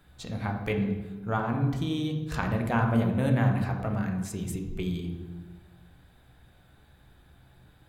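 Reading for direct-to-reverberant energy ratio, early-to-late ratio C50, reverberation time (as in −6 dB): 2.5 dB, 5.5 dB, 1.2 s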